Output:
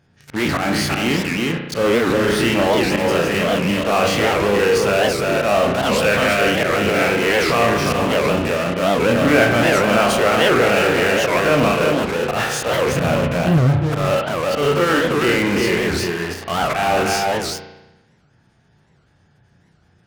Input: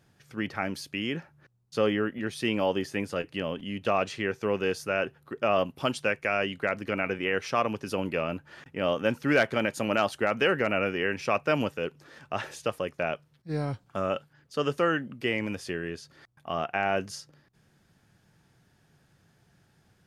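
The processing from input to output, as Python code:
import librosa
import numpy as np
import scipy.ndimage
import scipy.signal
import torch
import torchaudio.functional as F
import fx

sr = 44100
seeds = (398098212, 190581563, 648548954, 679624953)

p1 = fx.spec_dilate(x, sr, span_ms=60)
p2 = p1 + fx.echo_single(p1, sr, ms=352, db=-5.5, dry=0)
p3 = fx.spec_gate(p2, sr, threshold_db=-30, keep='strong')
p4 = fx.auto_swell(p3, sr, attack_ms=105.0)
p5 = fx.bass_treble(p4, sr, bass_db=14, treble_db=0, at=(12.92, 13.59))
p6 = fx.fuzz(p5, sr, gain_db=44.0, gate_db=-44.0)
p7 = p5 + F.gain(torch.from_numpy(p6), -8.5).numpy()
p8 = scipy.signal.sosfilt(scipy.signal.butter(2, 42.0, 'highpass', fs=sr, output='sos'), p7)
p9 = fx.low_shelf(p8, sr, hz=89.0, db=5.5)
p10 = fx.rev_spring(p9, sr, rt60_s=1.0, pass_ms=(34,), chirp_ms=45, drr_db=3.5)
y = fx.record_warp(p10, sr, rpm=78.0, depth_cents=250.0)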